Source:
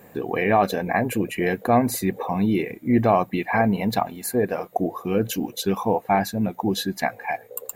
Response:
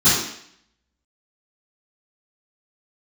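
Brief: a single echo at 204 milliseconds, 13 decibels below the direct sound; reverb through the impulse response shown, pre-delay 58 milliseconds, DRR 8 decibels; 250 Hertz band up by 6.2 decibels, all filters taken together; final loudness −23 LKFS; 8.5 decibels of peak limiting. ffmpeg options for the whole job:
-filter_complex "[0:a]equalizer=frequency=250:width_type=o:gain=7.5,alimiter=limit=-12dB:level=0:latency=1,aecho=1:1:204:0.224,asplit=2[link_01][link_02];[1:a]atrim=start_sample=2205,adelay=58[link_03];[link_02][link_03]afir=irnorm=-1:irlink=0,volume=-28.5dB[link_04];[link_01][link_04]amix=inputs=2:normalize=0,volume=-2.5dB"

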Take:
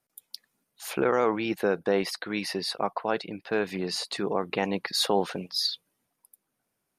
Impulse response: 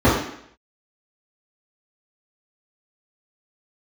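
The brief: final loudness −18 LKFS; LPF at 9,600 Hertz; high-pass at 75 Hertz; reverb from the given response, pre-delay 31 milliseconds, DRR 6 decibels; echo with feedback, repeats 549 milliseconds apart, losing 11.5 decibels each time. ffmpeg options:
-filter_complex "[0:a]highpass=75,lowpass=9600,aecho=1:1:549|1098|1647:0.266|0.0718|0.0194,asplit=2[link_01][link_02];[1:a]atrim=start_sample=2205,adelay=31[link_03];[link_02][link_03]afir=irnorm=-1:irlink=0,volume=-30dB[link_04];[link_01][link_04]amix=inputs=2:normalize=0,volume=8dB"

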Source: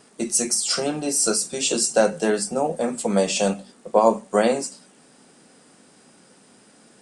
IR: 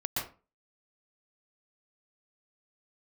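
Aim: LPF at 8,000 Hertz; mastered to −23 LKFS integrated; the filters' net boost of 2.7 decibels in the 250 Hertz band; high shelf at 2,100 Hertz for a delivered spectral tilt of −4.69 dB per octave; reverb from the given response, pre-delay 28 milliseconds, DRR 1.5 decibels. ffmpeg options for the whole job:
-filter_complex "[0:a]lowpass=8000,equalizer=frequency=250:width_type=o:gain=3.5,highshelf=frequency=2100:gain=-7,asplit=2[link_01][link_02];[1:a]atrim=start_sample=2205,adelay=28[link_03];[link_02][link_03]afir=irnorm=-1:irlink=0,volume=-7dB[link_04];[link_01][link_04]amix=inputs=2:normalize=0,volume=-2.5dB"

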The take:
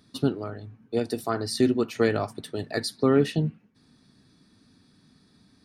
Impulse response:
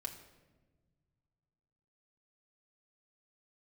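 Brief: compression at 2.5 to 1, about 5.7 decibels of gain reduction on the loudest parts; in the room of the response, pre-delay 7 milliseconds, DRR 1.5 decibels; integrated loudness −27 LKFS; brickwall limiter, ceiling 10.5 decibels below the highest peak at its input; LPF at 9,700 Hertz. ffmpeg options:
-filter_complex "[0:a]lowpass=9700,acompressor=threshold=-24dB:ratio=2.5,alimiter=limit=-23.5dB:level=0:latency=1,asplit=2[link_01][link_02];[1:a]atrim=start_sample=2205,adelay=7[link_03];[link_02][link_03]afir=irnorm=-1:irlink=0,volume=0.5dB[link_04];[link_01][link_04]amix=inputs=2:normalize=0,volume=5dB"

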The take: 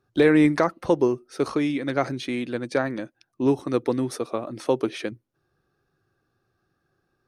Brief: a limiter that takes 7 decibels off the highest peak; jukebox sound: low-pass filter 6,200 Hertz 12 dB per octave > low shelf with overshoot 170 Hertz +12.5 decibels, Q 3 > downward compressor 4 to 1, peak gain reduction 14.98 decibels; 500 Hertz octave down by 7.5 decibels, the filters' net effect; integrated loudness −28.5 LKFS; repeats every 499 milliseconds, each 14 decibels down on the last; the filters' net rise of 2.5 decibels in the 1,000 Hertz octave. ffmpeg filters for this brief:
ffmpeg -i in.wav -af "equalizer=frequency=500:width_type=o:gain=-8,equalizer=frequency=1000:width_type=o:gain=6,alimiter=limit=-14dB:level=0:latency=1,lowpass=6200,lowshelf=frequency=170:width_type=q:width=3:gain=12.5,aecho=1:1:499|998:0.2|0.0399,acompressor=threshold=-32dB:ratio=4,volume=6.5dB" out.wav

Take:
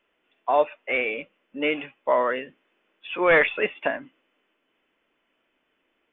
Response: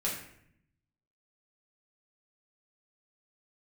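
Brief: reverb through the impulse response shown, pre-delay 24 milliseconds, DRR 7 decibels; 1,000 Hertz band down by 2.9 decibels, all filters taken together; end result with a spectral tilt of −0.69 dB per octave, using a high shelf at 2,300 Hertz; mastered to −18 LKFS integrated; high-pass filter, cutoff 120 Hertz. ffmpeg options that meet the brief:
-filter_complex "[0:a]highpass=120,equalizer=frequency=1000:width_type=o:gain=-4.5,highshelf=frequency=2300:gain=4.5,asplit=2[link_01][link_02];[1:a]atrim=start_sample=2205,adelay=24[link_03];[link_02][link_03]afir=irnorm=-1:irlink=0,volume=-12.5dB[link_04];[link_01][link_04]amix=inputs=2:normalize=0,volume=5.5dB"

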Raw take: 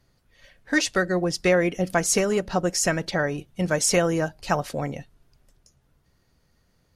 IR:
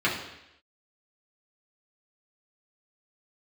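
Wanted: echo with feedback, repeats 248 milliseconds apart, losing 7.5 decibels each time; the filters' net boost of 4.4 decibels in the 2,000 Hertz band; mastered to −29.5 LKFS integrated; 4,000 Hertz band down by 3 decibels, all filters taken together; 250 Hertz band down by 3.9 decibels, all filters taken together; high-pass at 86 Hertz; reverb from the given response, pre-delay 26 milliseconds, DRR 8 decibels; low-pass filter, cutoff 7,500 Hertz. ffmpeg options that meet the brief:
-filter_complex "[0:a]highpass=86,lowpass=7500,equalizer=frequency=250:width_type=o:gain=-6.5,equalizer=frequency=2000:width_type=o:gain=6.5,equalizer=frequency=4000:width_type=o:gain=-5.5,aecho=1:1:248|496|744|992|1240:0.422|0.177|0.0744|0.0312|0.0131,asplit=2[link_01][link_02];[1:a]atrim=start_sample=2205,adelay=26[link_03];[link_02][link_03]afir=irnorm=-1:irlink=0,volume=-22dB[link_04];[link_01][link_04]amix=inputs=2:normalize=0,volume=-7dB"

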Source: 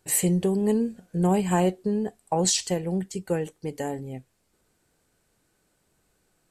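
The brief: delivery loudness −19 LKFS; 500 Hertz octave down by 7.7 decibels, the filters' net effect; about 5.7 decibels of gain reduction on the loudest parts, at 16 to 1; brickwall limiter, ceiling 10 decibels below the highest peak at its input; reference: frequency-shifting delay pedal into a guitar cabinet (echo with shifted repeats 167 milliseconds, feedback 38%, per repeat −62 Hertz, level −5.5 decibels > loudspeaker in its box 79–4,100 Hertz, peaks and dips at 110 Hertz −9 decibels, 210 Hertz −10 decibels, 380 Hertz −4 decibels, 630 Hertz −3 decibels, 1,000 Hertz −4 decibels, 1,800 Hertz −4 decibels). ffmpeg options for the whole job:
ffmpeg -i in.wav -filter_complex "[0:a]equalizer=frequency=500:width_type=o:gain=-6,acompressor=threshold=-25dB:ratio=16,alimiter=level_in=2.5dB:limit=-24dB:level=0:latency=1,volume=-2.5dB,asplit=6[link_01][link_02][link_03][link_04][link_05][link_06];[link_02]adelay=167,afreqshift=-62,volume=-5.5dB[link_07];[link_03]adelay=334,afreqshift=-124,volume=-13.9dB[link_08];[link_04]adelay=501,afreqshift=-186,volume=-22.3dB[link_09];[link_05]adelay=668,afreqshift=-248,volume=-30.7dB[link_10];[link_06]adelay=835,afreqshift=-310,volume=-39.1dB[link_11];[link_01][link_07][link_08][link_09][link_10][link_11]amix=inputs=6:normalize=0,highpass=79,equalizer=frequency=110:width_type=q:width=4:gain=-9,equalizer=frequency=210:width_type=q:width=4:gain=-10,equalizer=frequency=380:width_type=q:width=4:gain=-4,equalizer=frequency=630:width_type=q:width=4:gain=-3,equalizer=frequency=1000:width_type=q:width=4:gain=-4,equalizer=frequency=1800:width_type=q:width=4:gain=-4,lowpass=frequency=4100:width=0.5412,lowpass=frequency=4100:width=1.3066,volume=20.5dB" out.wav

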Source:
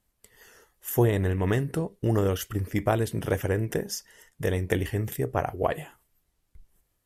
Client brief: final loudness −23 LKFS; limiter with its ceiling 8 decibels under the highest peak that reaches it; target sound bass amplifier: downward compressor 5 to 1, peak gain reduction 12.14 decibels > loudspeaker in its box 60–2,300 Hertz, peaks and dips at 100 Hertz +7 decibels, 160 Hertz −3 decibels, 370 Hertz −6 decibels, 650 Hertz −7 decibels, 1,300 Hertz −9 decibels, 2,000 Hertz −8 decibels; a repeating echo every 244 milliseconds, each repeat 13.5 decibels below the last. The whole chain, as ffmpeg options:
ffmpeg -i in.wav -af "alimiter=limit=-17.5dB:level=0:latency=1,aecho=1:1:244|488:0.211|0.0444,acompressor=threshold=-35dB:ratio=5,highpass=frequency=60:width=0.5412,highpass=frequency=60:width=1.3066,equalizer=frequency=100:width_type=q:width=4:gain=7,equalizer=frequency=160:width_type=q:width=4:gain=-3,equalizer=frequency=370:width_type=q:width=4:gain=-6,equalizer=frequency=650:width_type=q:width=4:gain=-7,equalizer=frequency=1300:width_type=q:width=4:gain=-9,equalizer=frequency=2000:width_type=q:width=4:gain=-8,lowpass=frequency=2300:width=0.5412,lowpass=frequency=2300:width=1.3066,volume=15dB" out.wav

